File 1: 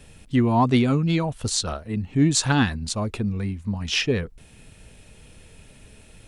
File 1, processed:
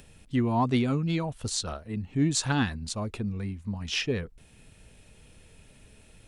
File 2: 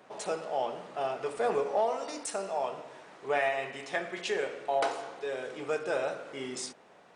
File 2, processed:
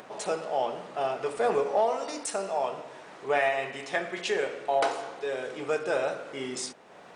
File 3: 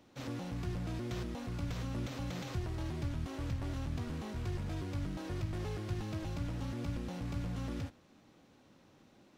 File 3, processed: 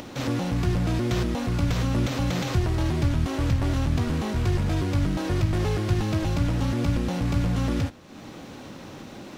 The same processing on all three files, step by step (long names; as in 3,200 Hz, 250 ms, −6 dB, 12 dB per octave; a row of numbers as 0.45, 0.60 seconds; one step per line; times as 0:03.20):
upward compression, threshold −45 dBFS
normalise the peak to −12 dBFS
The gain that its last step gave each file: −6.0, +3.0, +14.0 decibels